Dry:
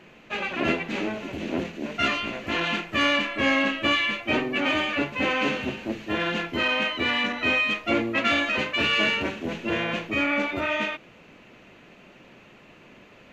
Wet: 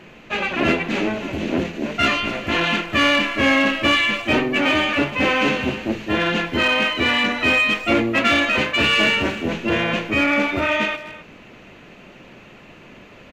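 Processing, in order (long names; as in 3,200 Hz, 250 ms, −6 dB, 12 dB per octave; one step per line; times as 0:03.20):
low-shelf EQ 100 Hz +5.5 dB
in parallel at −4 dB: gain into a clipping stage and back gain 20.5 dB
on the sum: far-end echo of a speakerphone 260 ms, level −14 dB
level +2 dB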